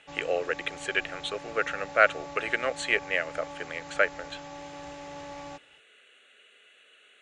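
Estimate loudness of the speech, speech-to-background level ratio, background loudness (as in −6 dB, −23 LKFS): −28.5 LKFS, 14.0 dB, −42.5 LKFS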